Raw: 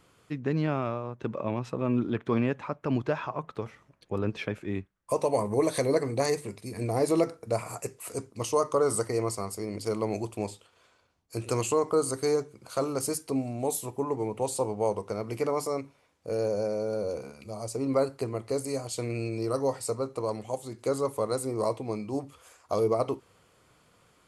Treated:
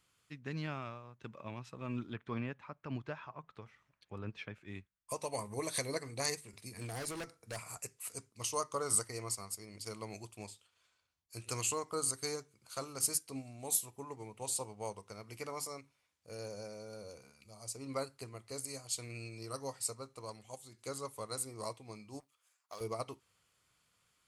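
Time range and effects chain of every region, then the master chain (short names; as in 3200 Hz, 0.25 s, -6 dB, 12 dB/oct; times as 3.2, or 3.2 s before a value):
2.13–4.66 LPF 1800 Hz 6 dB/oct + mismatched tape noise reduction encoder only
6.53–7.77 hard clip -24.5 dBFS + three-band squash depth 40%
22.2–22.81 G.711 law mismatch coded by A + HPF 1100 Hz 6 dB/oct + tilt shelf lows +3.5 dB, about 1500 Hz
whole clip: passive tone stack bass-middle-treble 5-5-5; upward expander 1.5:1, over -55 dBFS; gain +8.5 dB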